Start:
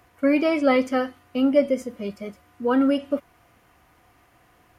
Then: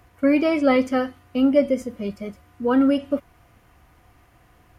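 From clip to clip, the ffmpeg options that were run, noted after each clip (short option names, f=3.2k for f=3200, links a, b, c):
-af "lowshelf=f=130:g=11.5"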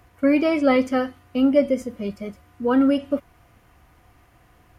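-af anull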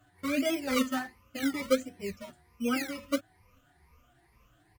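-filter_complex "[0:a]afftfilt=real='re*pow(10,18/40*sin(2*PI*(0.85*log(max(b,1)*sr/1024/100)/log(2)-(2.2)*(pts-256)/sr)))':imag='im*pow(10,18/40*sin(2*PI*(0.85*log(max(b,1)*sr/1024/100)/log(2)-(2.2)*(pts-256)/sr)))':win_size=1024:overlap=0.75,acrossover=split=610[a][b];[a]acrusher=samples=22:mix=1:aa=0.000001:lfo=1:lforange=13.2:lforate=1.4[c];[c][b]amix=inputs=2:normalize=0,asplit=2[d][e];[e]adelay=7.5,afreqshift=-0.6[f];[d][f]amix=inputs=2:normalize=1,volume=-8.5dB"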